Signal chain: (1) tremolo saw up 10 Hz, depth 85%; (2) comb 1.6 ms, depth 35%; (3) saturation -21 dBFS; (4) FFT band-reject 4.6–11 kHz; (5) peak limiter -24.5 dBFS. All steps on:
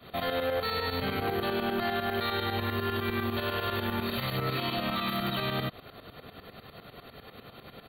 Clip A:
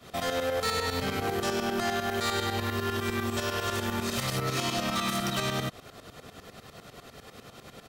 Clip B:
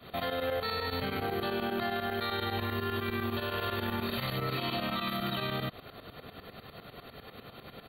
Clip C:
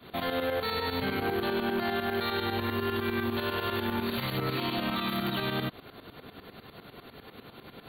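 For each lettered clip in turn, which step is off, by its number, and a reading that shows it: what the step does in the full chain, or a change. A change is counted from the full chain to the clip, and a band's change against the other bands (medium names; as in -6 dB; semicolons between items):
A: 4, 8 kHz band +16.0 dB; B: 3, distortion -11 dB; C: 2, 250 Hz band +2.5 dB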